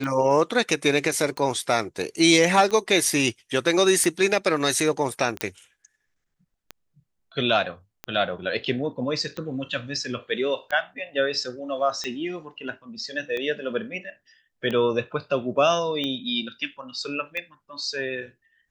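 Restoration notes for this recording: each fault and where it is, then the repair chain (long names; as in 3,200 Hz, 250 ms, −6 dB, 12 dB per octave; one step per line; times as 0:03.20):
scratch tick 45 rpm −17 dBFS
0:05.41: click −8 dBFS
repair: click removal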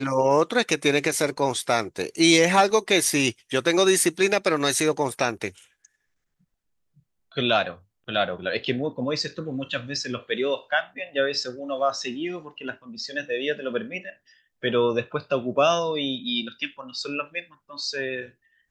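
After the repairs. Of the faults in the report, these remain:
none of them is left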